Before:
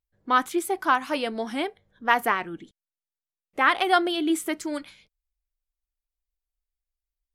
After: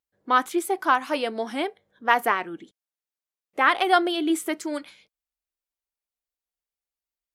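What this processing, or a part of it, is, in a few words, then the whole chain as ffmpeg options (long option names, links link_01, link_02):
filter by subtraction: -filter_complex "[0:a]asplit=2[link_01][link_02];[link_02]lowpass=420,volume=-1[link_03];[link_01][link_03]amix=inputs=2:normalize=0"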